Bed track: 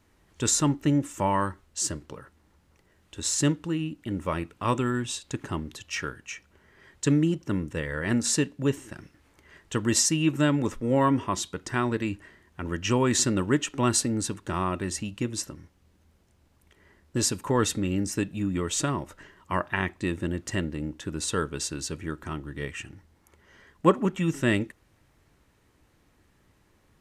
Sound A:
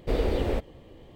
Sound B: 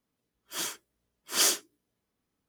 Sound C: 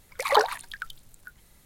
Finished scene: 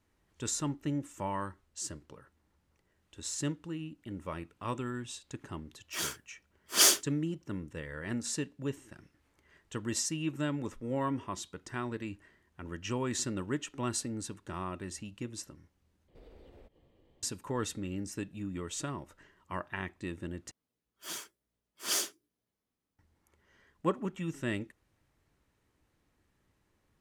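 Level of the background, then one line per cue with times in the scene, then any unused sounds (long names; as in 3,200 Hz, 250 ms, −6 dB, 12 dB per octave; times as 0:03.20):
bed track −10.5 dB
0:05.40: mix in B −1.5 dB + multiband upward and downward expander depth 40%
0:16.08: overwrite with A −17 dB + downward compressor 2.5 to 1, threshold −41 dBFS
0:20.51: overwrite with B −7 dB
not used: C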